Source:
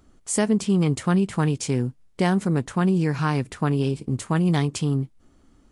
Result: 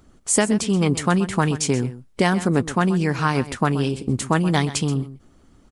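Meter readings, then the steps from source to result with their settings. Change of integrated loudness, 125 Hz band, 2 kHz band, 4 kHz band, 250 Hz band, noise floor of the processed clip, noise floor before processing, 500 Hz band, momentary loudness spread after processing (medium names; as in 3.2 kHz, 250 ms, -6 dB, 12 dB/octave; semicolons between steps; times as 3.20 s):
+2.0 dB, +0.5 dB, +6.5 dB, +6.0 dB, +1.0 dB, -54 dBFS, -58 dBFS, +3.0 dB, 5 LU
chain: harmonic-percussive split percussive +7 dB; delay 128 ms -14.5 dB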